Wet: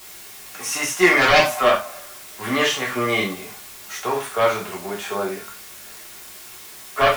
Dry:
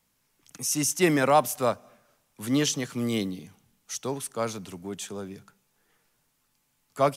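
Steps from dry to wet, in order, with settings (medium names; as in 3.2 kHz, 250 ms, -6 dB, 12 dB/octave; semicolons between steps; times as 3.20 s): dynamic bell 410 Hz, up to -7 dB, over -35 dBFS, Q 0.85; harmonic-percussive split harmonic +9 dB; three-band isolator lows -24 dB, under 500 Hz, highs -19 dB, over 2.4 kHz; added noise white -56 dBFS; sine folder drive 15 dB, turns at -6.5 dBFS; reverberation, pre-delay 3 ms, DRR -4 dB; trim -8 dB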